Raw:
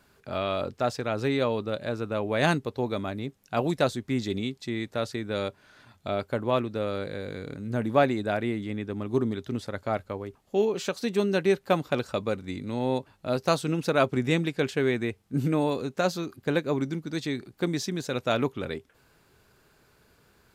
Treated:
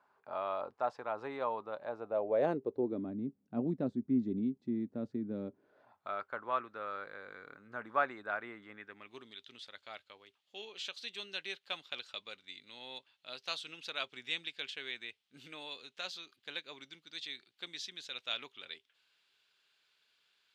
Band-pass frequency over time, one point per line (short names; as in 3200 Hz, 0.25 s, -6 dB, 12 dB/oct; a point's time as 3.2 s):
band-pass, Q 2.8
1.8 s 940 Hz
3.16 s 240 Hz
5.47 s 240 Hz
6.1 s 1300 Hz
8.7 s 1300 Hz
9.27 s 3300 Hz